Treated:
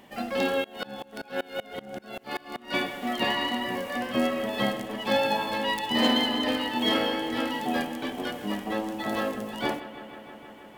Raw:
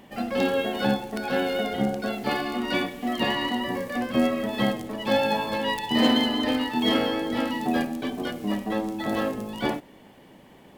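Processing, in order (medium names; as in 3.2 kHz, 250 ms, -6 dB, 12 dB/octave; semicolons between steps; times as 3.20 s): bass shelf 360 Hz -6.5 dB; bucket-brigade echo 158 ms, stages 4096, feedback 83%, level -15 dB; 0.64–2.74 s: sawtooth tremolo in dB swelling 5.2 Hz, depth 27 dB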